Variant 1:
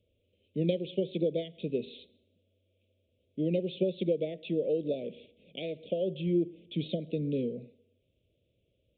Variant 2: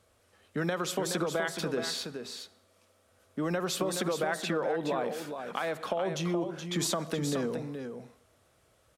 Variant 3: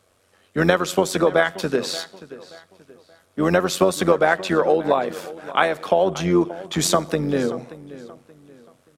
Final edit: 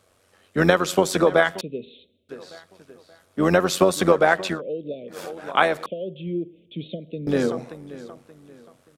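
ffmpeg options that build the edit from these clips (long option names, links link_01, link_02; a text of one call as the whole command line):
ffmpeg -i take0.wav -i take1.wav -i take2.wav -filter_complex "[0:a]asplit=3[link_01][link_02][link_03];[2:a]asplit=4[link_04][link_05][link_06][link_07];[link_04]atrim=end=1.612[link_08];[link_01]atrim=start=1.608:end=2.292[link_09];[link_05]atrim=start=2.288:end=4.62[link_10];[link_02]atrim=start=4.46:end=5.23[link_11];[link_06]atrim=start=5.07:end=5.862[link_12];[link_03]atrim=start=5.858:end=7.272[link_13];[link_07]atrim=start=7.268[link_14];[link_08][link_09]acrossfade=duration=0.004:curve1=hsin:curve2=hsin[link_15];[link_15][link_10]acrossfade=duration=0.004:curve1=hsin:curve2=hsin[link_16];[link_16][link_11]acrossfade=duration=0.16:curve1=tri:curve2=tri[link_17];[link_17][link_12]acrossfade=duration=0.16:curve1=tri:curve2=tri[link_18];[link_18][link_13]acrossfade=duration=0.004:curve1=hsin:curve2=hsin[link_19];[link_19][link_14]acrossfade=duration=0.004:curve1=hsin:curve2=hsin" out.wav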